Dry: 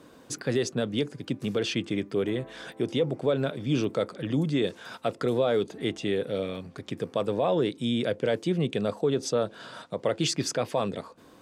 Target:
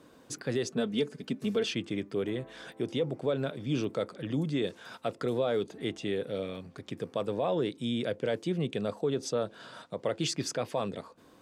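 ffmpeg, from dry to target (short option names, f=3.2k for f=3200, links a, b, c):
-filter_complex "[0:a]asettb=1/sr,asplit=3[a][b][c];[a]atrim=end=0.714[d];[b]atrim=start=0.71:end=1.71,asetpts=PTS-STARTPTS,afade=t=in:d=0.004:c=qsin,afade=t=out:st=0.996:d=0.004:c=qsin,aecho=1:1:4.6:0.71,atrim=end_sample=44100[e];[c]atrim=start=1.706[f];[d][e]acrossfade=d=0.004:c1=hsin:c2=qsin[g];[g][f]acrossfade=d=0.004:c1=qsin:c2=hsin,volume=-4.5dB"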